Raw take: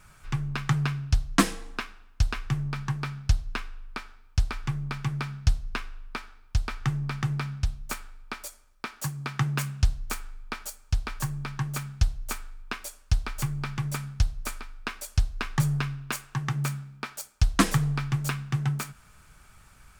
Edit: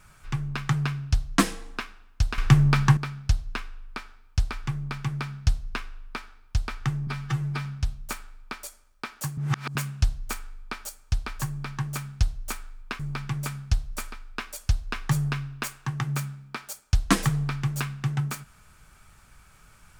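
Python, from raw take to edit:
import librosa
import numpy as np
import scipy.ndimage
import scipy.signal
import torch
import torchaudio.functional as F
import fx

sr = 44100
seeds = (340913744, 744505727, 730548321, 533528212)

y = fx.edit(x, sr, fx.clip_gain(start_s=2.38, length_s=0.59, db=11.5),
    fx.stretch_span(start_s=7.07, length_s=0.39, factor=1.5),
    fx.reverse_span(start_s=9.18, length_s=0.38),
    fx.cut(start_s=12.8, length_s=0.68), tone=tone)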